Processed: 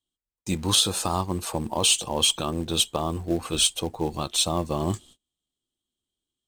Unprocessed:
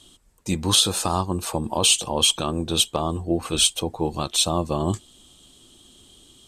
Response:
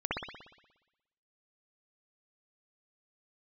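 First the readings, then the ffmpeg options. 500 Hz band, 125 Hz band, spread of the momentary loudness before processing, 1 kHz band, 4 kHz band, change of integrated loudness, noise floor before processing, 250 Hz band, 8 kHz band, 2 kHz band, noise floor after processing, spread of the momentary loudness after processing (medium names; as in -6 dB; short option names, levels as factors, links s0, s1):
-2.5 dB, -2.5 dB, 9 LU, -2.5 dB, -2.5 dB, -2.5 dB, -55 dBFS, -2.5 dB, -2.5 dB, -2.5 dB, under -85 dBFS, 9 LU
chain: -filter_complex "[0:a]agate=range=0.0224:threshold=0.00562:ratio=16:detection=peak,asplit=2[s0][s1];[s1]acrusher=bits=3:mode=log:mix=0:aa=0.000001,volume=0.562[s2];[s0][s2]amix=inputs=2:normalize=0,volume=0.473"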